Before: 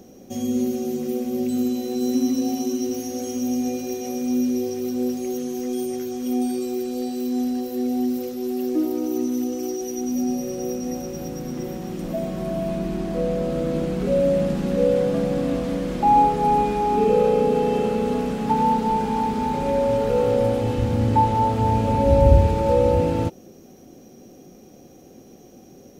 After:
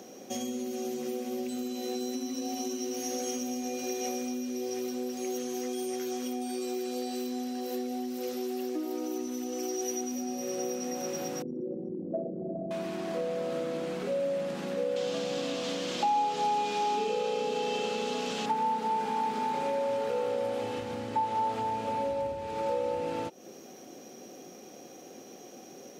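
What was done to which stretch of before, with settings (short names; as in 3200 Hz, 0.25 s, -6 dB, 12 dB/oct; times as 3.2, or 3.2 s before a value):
11.42–12.71 formant sharpening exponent 3
14.96–18.46 band shelf 4500 Hz +10 dB
whole clip: compressor 6:1, threshold -29 dBFS; weighting filter A; gain +4 dB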